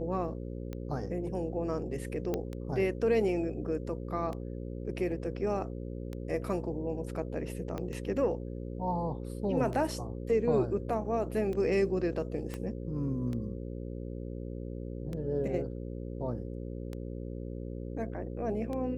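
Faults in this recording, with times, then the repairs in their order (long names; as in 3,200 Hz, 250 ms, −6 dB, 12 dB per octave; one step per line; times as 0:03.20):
mains buzz 60 Hz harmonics 9 −39 dBFS
scratch tick 33 1/3 rpm −26 dBFS
0:02.34: click −19 dBFS
0:07.78: click −24 dBFS
0:12.54: click −23 dBFS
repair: click removal
hum removal 60 Hz, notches 9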